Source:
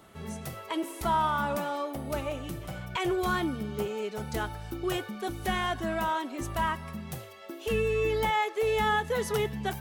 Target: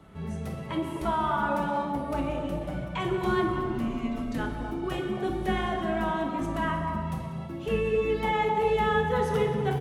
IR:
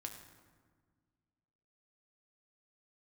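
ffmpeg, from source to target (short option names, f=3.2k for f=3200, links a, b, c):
-filter_complex "[0:a]asplit=3[a][b][c];[a]afade=t=out:st=3.46:d=0.02[d];[b]afreqshift=-180,afade=t=in:st=3.46:d=0.02,afade=t=out:st=4.37:d=0.02[e];[c]afade=t=in:st=4.37:d=0.02[f];[d][e][f]amix=inputs=3:normalize=0,bass=f=250:g=10,treble=f=4k:g=-9,acrossover=split=170|1200|2700[g][h][i][j];[g]acompressor=threshold=-41dB:ratio=6[k];[h]aecho=1:1:253:0.668[l];[k][l][i][j]amix=inputs=4:normalize=0[m];[1:a]atrim=start_sample=2205,afade=t=out:st=0.42:d=0.01,atrim=end_sample=18963,asetrate=23814,aresample=44100[n];[m][n]afir=irnorm=-1:irlink=0"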